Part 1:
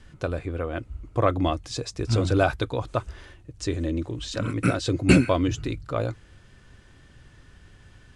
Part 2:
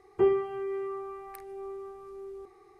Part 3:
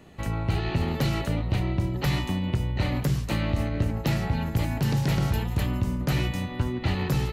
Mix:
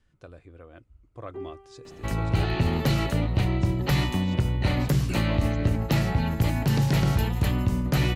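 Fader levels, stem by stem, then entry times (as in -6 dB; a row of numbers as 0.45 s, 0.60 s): -18.0 dB, -15.0 dB, +2.0 dB; 0.00 s, 1.15 s, 1.85 s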